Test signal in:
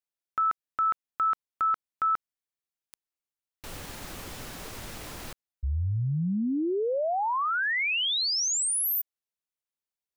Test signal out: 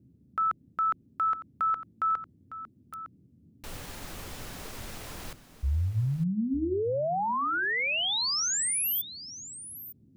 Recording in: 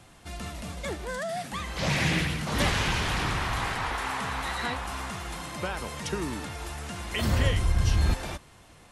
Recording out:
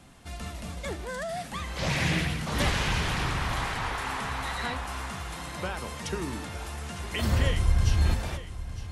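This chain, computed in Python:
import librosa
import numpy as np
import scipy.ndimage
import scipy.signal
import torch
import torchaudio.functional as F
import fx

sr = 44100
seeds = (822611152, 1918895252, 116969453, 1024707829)

p1 = fx.dmg_noise_band(x, sr, seeds[0], low_hz=76.0, high_hz=290.0, level_db=-59.0)
p2 = fx.low_shelf(p1, sr, hz=130.0, db=4.0)
p3 = fx.hum_notches(p2, sr, base_hz=50, count=7)
p4 = p3 + fx.echo_single(p3, sr, ms=908, db=-14.0, dry=0)
y = F.gain(torch.from_numpy(p4), -1.5).numpy()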